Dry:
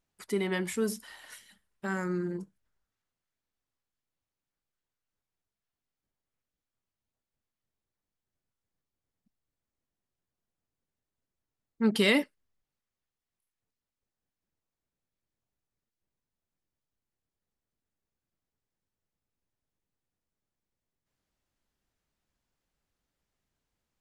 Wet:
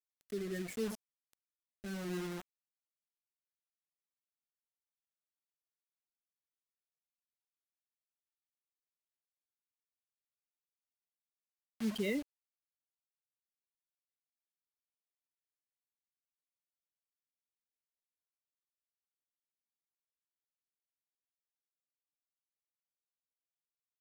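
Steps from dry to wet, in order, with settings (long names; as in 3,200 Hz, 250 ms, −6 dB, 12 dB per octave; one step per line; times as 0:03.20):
expanding power law on the bin magnitudes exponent 1.8
bit reduction 6 bits
rotating-speaker cabinet horn 0.75 Hz
level −7.5 dB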